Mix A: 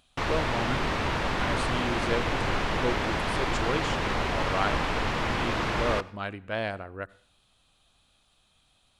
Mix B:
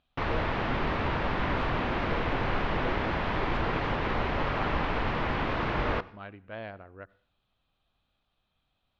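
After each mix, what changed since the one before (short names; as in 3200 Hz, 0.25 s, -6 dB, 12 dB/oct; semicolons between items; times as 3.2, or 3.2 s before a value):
speech -8.0 dB; master: add air absorption 260 m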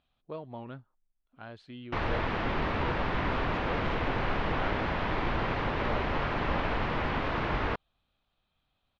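background: entry +1.75 s; reverb: off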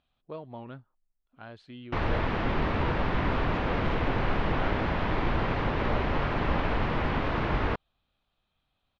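background: add low shelf 450 Hz +4.5 dB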